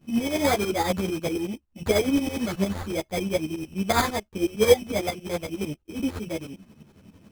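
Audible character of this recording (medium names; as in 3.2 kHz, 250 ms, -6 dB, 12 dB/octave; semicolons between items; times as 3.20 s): a buzz of ramps at a fixed pitch in blocks of 8 samples; tremolo saw up 11 Hz, depth 85%; aliases and images of a low sample rate 2.8 kHz, jitter 0%; a shimmering, thickened sound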